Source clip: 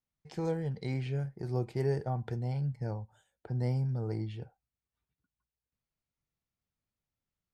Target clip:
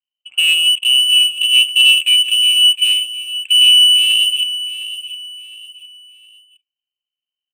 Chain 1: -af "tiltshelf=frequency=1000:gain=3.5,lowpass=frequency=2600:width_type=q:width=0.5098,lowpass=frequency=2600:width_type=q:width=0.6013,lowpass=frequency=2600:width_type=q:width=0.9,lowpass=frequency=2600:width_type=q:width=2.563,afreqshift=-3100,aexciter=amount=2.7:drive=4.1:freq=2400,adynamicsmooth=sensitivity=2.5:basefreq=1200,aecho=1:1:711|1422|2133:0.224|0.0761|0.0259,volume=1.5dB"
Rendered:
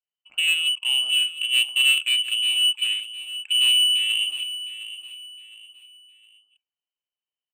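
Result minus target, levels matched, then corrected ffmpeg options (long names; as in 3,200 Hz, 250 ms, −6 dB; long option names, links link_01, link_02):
1,000 Hz band +10.0 dB
-af "tiltshelf=frequency=1000:gain=13.5,lowpass=frequency=2600:width_type=q:width=0.5098,lowpass=frequency=2600:width_type=q:width=0.6013,lowpass=frequency=2600:width_type=q:width=0.9,lowpass=frequency=2600:width_type=q:width=2.563,afreqshift=-3100,aexciter=amount=2.7:drive=4.1:freq=2400,adynamicsmooth=sensitivity=2.5:basefreq=1200,aecho=1:1:711|1422|2133:0.224|0.0761|0.0259,volume=1.5dB"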